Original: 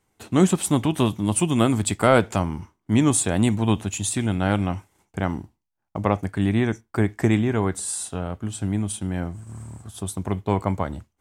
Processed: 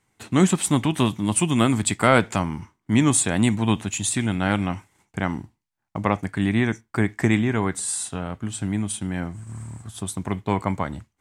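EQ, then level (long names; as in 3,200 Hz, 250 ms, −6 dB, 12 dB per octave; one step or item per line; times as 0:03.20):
dynamic equaliser 100 Hz, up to −4 dB, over −34 dBFS, Q 1.5
graphic EQ with 10 bands 125 Hz +7 dB, 250 Hz +4 dB, 1,000 Hz +4 dB, 2,000 Hz +8 dB, 4,000 Hz +4 dB, 8,000 Hz +6 dB
−4.5 dB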